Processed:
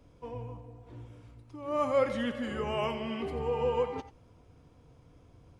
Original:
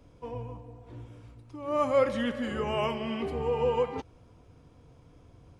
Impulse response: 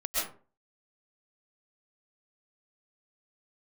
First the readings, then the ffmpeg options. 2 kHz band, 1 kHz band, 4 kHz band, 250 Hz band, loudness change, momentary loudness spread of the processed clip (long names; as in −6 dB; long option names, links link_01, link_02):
−2.0 dB, −2.5 dB, −2.5 dB, −2.5 dB, −2.5 dB, 21 LU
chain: -filter_complex "[1:a]atrim=start_sample=2205,atrim=end_sample=4410,asetrate=48510,aresample=44100[link_01];[0:a][link_01]afir=irnorm=-1:irlink=0"